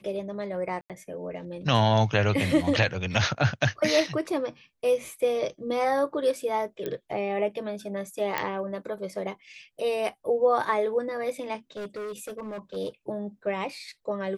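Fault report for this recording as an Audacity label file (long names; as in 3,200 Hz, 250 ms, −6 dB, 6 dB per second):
0.810000	0.900000	drop-out 87 ms
6.860000	6.860000	click −19 dBFS
8.380000	8.380000	click −12 dBFS
11.770000	12.770000	clipping −32.5 dBFS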